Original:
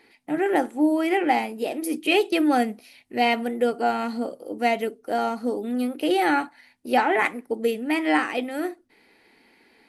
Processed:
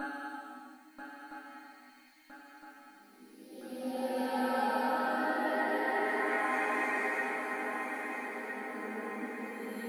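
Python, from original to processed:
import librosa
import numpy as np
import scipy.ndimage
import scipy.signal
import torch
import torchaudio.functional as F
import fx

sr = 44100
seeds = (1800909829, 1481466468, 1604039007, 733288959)

p1 = fx.spec_quant(x, sr, step_db=30)
p2 = scipy.signal.sosfilt(scipy.signal.butter(2, 54.0, 'highpass', fs=sr, output='sos'), p1)
p3 = fx.quant_dither(p2, sr, seeds[0], bits=8, dither='triangular')
p4 = p2 + F.gain(torch.from_numpy(p3), -11.0).numpy()
p5 = fx.paulstretch(p4, sr, seeds[1], factor=8.2, window_s=0.25, from_s=6.41)
p6 = fx.resonator_bank(p5, sr, root=56, chord='major', decay_s=0.21)
p7 = fx.echo_swing(p6, sr, ms=1313, ratio=3, feedback_pct=53, wet_db=-7.5)
y = F.gain(torch.from_numpy(p7), 2.5).numpy()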